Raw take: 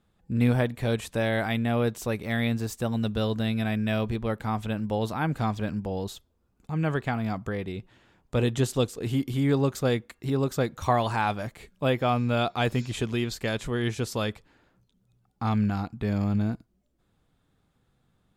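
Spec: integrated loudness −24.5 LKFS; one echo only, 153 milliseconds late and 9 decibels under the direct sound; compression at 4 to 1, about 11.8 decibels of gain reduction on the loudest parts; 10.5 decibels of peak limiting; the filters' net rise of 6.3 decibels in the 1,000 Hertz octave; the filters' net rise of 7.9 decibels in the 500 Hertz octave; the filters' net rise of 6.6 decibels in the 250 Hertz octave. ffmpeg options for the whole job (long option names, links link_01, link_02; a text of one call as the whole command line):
ffmpeg -i in.wav -af "equalizer=frequency=250:width_type=o:gain=6,equalizer=frequency=500:width_type=o:gain=6.5,equalizer=frequency=1000:width_type=o:gain=5.5,acompressor=threshold=-27dB:ratio=4,alimiter=limit=-23.5dB:level=0:latency=1,aecho=1:1:153:0.355,volume=8dB" out.wav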